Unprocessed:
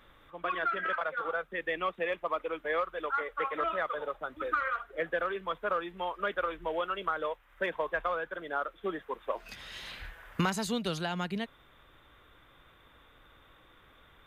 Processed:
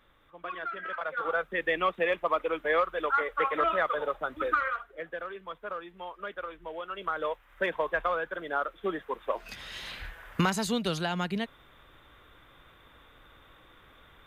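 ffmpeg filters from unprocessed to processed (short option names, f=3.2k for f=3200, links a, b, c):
-af "volume=14dB,afade=t=in:st=0.9:d=0.51:silence=0.316228,afade=t=out:st=4.43:d=0.53:silence=0.281838,afade=t=in:st=6.84:d=0.48:silence=0.354813"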